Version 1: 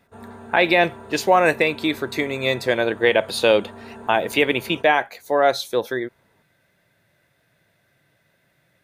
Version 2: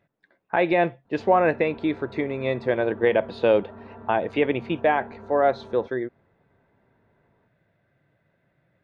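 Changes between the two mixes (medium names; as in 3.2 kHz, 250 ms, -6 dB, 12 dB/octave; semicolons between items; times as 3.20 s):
background: entry +1.05 s; master: add tape spacing loss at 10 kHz 42 dB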